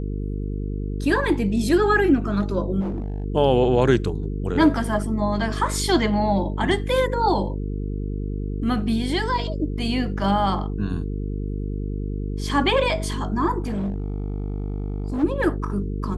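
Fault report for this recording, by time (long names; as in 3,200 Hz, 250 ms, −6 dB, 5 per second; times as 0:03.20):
mains buzz 50 Hz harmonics 9 −27 dBFS
0:02.80–0:03.24: clipping −23.5 dBFS
0:13.62–0:15.24: clipping −22 dBFS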